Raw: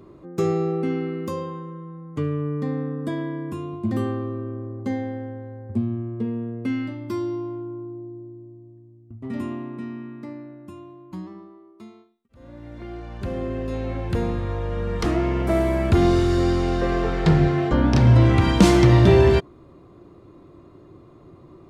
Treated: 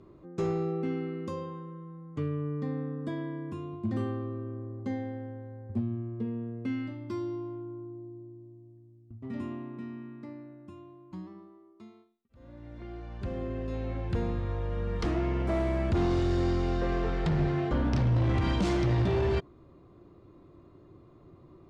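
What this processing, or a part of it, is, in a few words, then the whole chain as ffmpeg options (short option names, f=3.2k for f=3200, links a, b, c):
limiter into clipper: -af "alimiter=limit=-11dB:level=0:latency=1:release=32,asoftclip=type=hard:threshold=-16dB,lowpass=6.6k,lowshelf=f=110:g=4.5,volume=-8dB"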